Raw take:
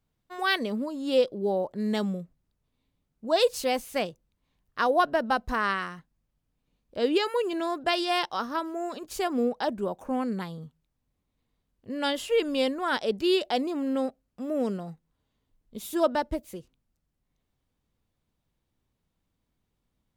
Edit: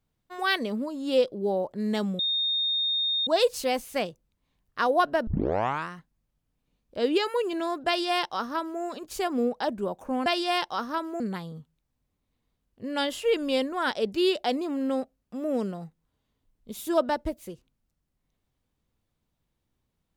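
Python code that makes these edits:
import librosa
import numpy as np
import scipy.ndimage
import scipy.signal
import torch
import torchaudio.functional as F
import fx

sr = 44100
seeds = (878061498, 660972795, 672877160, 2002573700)

y = fx.edit(x, sr, fx.bleep(start_s=2.19, length_s=1.08, hz=3680.0, db=-23.5),
    fx.tape_start(start_s=5.27, length_s=0.62),
    fx.duplicate(start_s=7.87, length_s=0.94, to_s=10.26), tone=tone)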